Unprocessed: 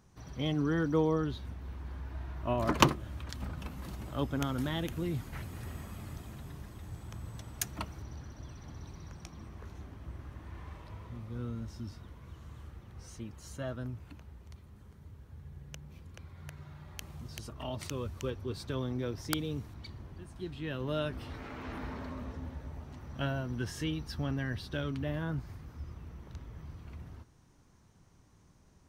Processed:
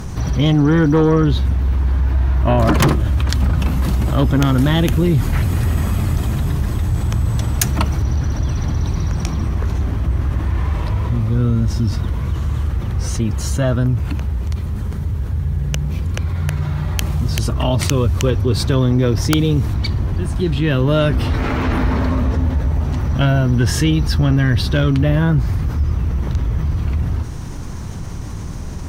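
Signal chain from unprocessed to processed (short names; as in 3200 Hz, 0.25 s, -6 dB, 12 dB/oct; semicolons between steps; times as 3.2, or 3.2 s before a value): low shelf 140 Hz +9.5 dB; in parallel at -7 dB: sine folder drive 17 dB, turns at -3 dBFS; on the sum: fast leveller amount 50%; gain -1 dB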